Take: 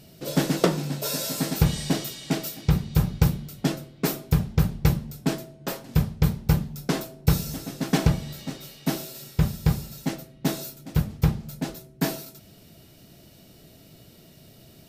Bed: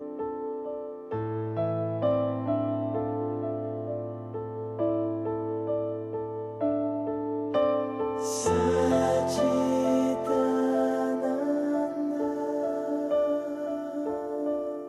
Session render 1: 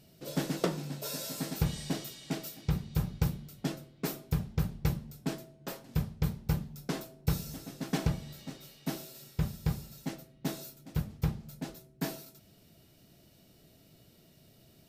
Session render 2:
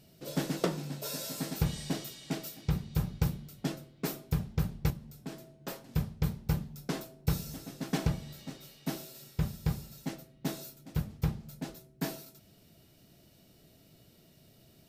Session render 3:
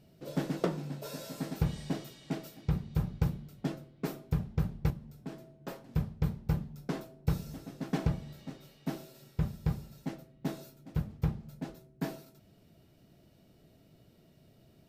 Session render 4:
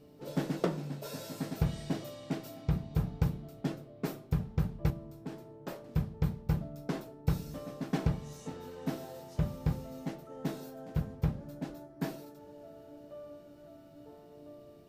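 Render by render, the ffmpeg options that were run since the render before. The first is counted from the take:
-af "volume=0.335"
-filter_complex "[0:a]asettb=1/sr,asplit=3[s0][s1][s2];[s0]atrim=end=4.904[s3];[s1]atrim=start=4.9:end=5.59,asetpts=PTS-STARTPTS,afade=t=in:d=0.004:c=qsin,afade=t=out:st=0.686:d=0.004:c=qsin,acompressor=threshold=0.00355:ratio=1.5:attack=3.2:release=140:knee=1:detection=peak[s4];[s2]atrim=start=5.586[s5];[s3][s4]acrossfade=d=0.004:c1=hsin:c2=qsin[s6];[s6][s5]acrossfade=d=0.004:c1=qsin:c2=hsin"
-af "highshelf=f=2900:g=-11"
-filter_complex "[1:a]volume=0.0794[s0];[0:a][s0]amix=inputs=2:normalize=0"

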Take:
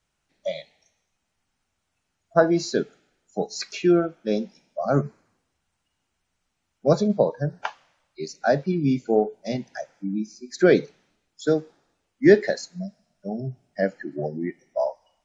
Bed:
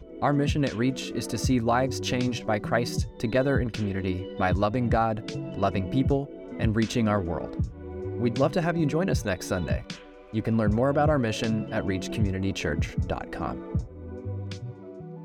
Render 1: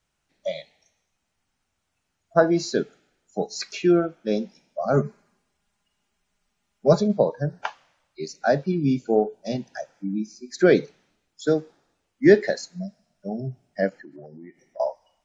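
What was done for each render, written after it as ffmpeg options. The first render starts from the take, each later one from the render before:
-filter_complex "[0:a]asettb=1/sr,asplit=3[s0][s1][s2];[s0]atrim=end=4.934[s3];[s1]atrim=start=4.93:end=7,asetpts=PTS-STARTPTS,afade=t=in:d=0.004:c=qsin,afade=t=out:st=2.066:d=0.004:c=qsin,aecho=1:1:4.9:0.65,atrim=end_sample=91287[s4];[s2]atrim=start=6.996[s5];[s3][s4]acrossfade=d=0.004:c1=hsin:c2=qsin[s6];[s6][s5]acrossfade=d=0.004:c1=qsin:c2=hsin,asettb=1/sr,asplit=3[s7][s8][s9];[s7]atrim=end=8.584[s10];[s8]atrim=start=8.58:end=9.96,asetpts=PTS-STARTPTS,afade=t=in:d=0.004:c=qsin,afade=t=out:st=1.376:d=0.004:c=qsin,bandreject=f=2100:w=6.2[s11];[s9]atrim=start=9.956[s12];[s10][s11]acrossfade=d=0.004:c1=hsin:c2=qsin[s13];[s13][s12]acrossfade=d=0.004:c1=qsin:c2=hsin,asettb=1/sr,asplit=3[s14][s15][s16];[s14]atrim=end=13.894[s17];[s15]atrim=start=13.89:end=14.8,asetpts=PTS-STARTPTS,afade=t=in:d=0.004:c=qsin,afade=t=out:st=0.906:d=0.004:c=qsin,acompressor=threshold=0.00794:ratio=4:attack=3.2:release=140:knee=1:detection=peak[s18];[s16]atrim=start=14.796[s19];[s17][s18]acrossfade=d=0.004:c1=hsin:c2=qsin[s20];[s20][s19]acrossfade=d=0.004:c1=qsin:c2=hsin"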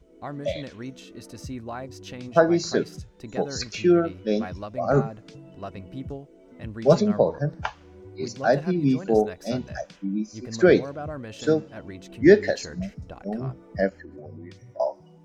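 -filter_complex "[1:a]volume=0.266[s0];[0:a][s0]amix=inputs=2:normalize=0"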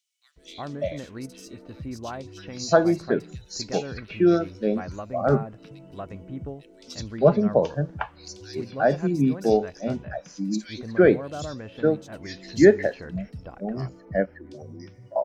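-filter_complex "[0:a]acrossover=split=2900[s0][s1];[s0]adelay=360[s2];[s2][s1]amix=inputs=2:normalize=0"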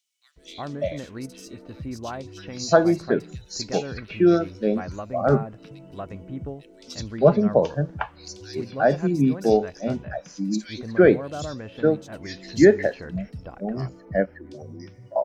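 -af "volume=1.19,alimiter=limit=0.708:level=0:latency=1"

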